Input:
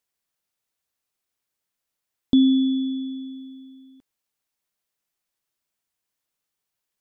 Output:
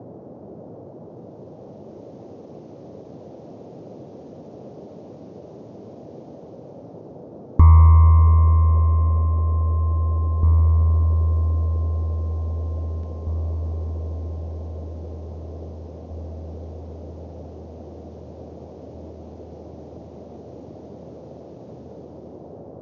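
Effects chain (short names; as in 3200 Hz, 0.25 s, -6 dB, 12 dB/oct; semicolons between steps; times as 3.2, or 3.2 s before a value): self-modulated delay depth 0.071 ms; band shelf 1000 Hz +16 dB; AGC gain up to 16.5 dB; band noise 310–2000 Hz -39 dBFS; darkening echo 0.871 s, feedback 35%, low-pass 2500 Hz, level -10.5 dB; wide varispeed 0.307×; ending taper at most 110 dB/s; gain -1 dB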